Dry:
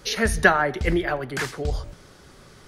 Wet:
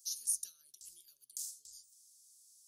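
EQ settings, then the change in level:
inverse Chebyshev high-pass filter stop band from 2,100 Hz, stop band 60 dB
0.0 dB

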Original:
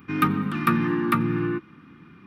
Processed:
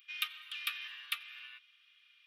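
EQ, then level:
four-pole ladder high-pass 2,800 Hz, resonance 60%
+5.5 dB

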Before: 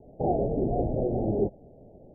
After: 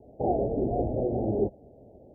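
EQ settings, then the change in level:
high-pass filter 43 Hz
parametric band 160 Hz −9.5 dB 0.29 octaves
0.0 dB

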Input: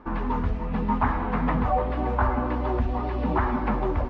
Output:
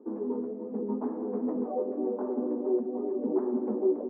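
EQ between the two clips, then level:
elliptic high-pass filter 220 Hz, stop band 40 dB
low-pass with resonance 410 Hz, resonance Q 3.9
high-frequency loss of the air 120 metres
−5.5 dB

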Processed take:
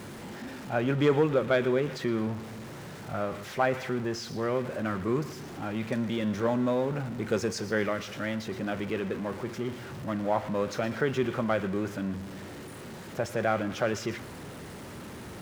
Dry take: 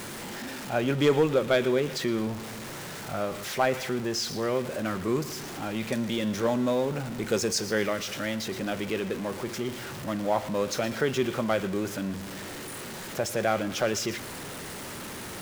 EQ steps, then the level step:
high-pass filter 53 Hz
spectral tilt −2 dB per octave
dynamic equaliser 1,500 Hz, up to +6 dB, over −40 dBFS, Q 0.71
−5.0 dB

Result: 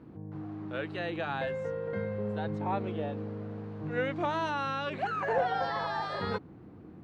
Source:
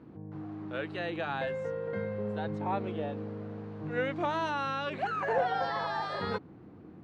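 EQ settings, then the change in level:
low-shelf EQ 85 Hz +6 dB
0.0 dB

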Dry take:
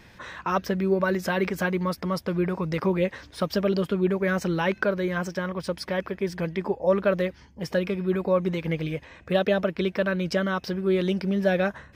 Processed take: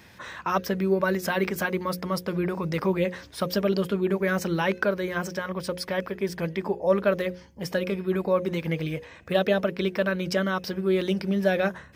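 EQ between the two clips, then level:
high-pass filter 60 Hz
high-shelf EQ 8,800 Hz +9 dB
mains-hum notches 60/120/180/240/300/360/420/480/540 Hz
0.0 dB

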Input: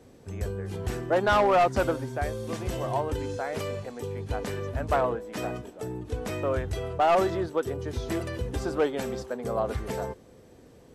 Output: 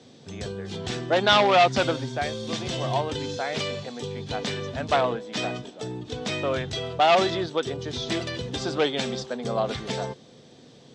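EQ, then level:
dynamic equaliser 2,300 Hz, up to +4 dB, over −45 dBFS, Q 1.9
loudspeaker in its box 130–7,600 Hz, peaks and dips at 140 Hz +10 dB, 230 Hz +5 dB, 720 Hz +3 dB, 3,500 Hz +8 dB
parametric band 4,600 Hz +10.5 dB 1.7 octaves
0.0 dB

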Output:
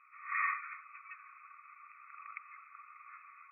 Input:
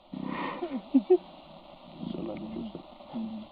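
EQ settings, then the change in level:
linear-phase brick-wall band-pass 1,100–2,600 Hz
high-frequency loss of the air 260 metres
+10.5 dB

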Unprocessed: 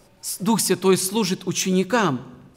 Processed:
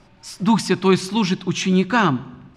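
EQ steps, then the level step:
low-pass filter 3,800 Hz 12 dB per octave
parametric band 480 Hz −13 dB 0.46 octaves
+4.5 dB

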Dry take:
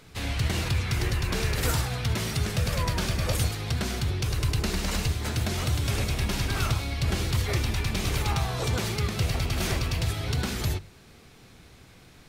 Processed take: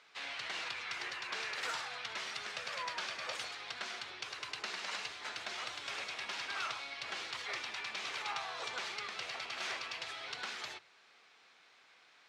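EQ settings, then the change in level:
high-pass filter 970 Hz 12 dB per octave
high-frequency loss of the air 130 metres
−3.5 dB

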